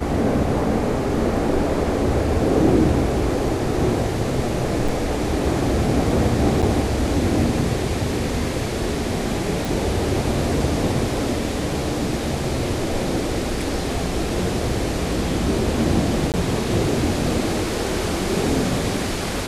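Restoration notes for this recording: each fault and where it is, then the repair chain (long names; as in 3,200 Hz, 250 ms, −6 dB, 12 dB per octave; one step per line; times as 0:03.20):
0:04.88: drop-out 4.5 ms
0:06.62–0:06.63: drop-out 7.2 ms
0:09.65: click
0:16.32–0:16.34: drop-out 18 ms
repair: click removal
repair the gap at 0:04.88, 4.5 ms
repair the gap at 0:06.62, 7.2 ms
repair the gap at 0:16.32, 18 ms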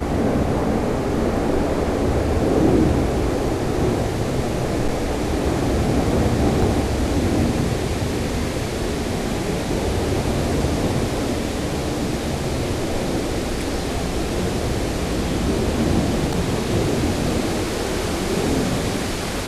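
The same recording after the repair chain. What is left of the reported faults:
0:09.65: click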